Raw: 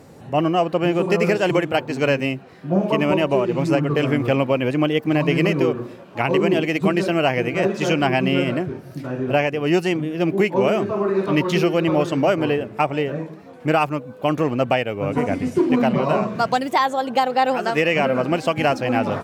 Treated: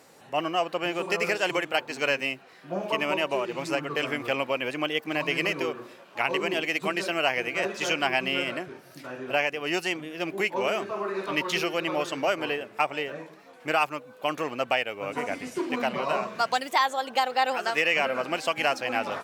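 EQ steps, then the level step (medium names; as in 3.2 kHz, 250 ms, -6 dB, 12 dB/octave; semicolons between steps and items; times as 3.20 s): high-pass 1.4 kHz 6 dB/octave; 0.0 dB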